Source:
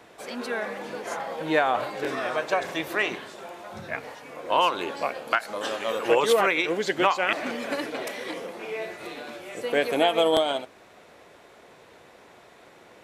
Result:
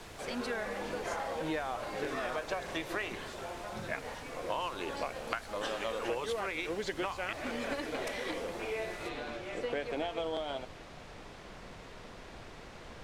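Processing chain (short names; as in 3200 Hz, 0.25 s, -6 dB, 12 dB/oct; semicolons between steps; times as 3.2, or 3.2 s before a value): compressor 10:1, threshold -30 dBFS, peak gain reduction 15 dB; added noise pink -47 dBFS; Bessel low-pass 8700 Hz, order 2, from 9.08 s 4100 Hz; gain -2 dB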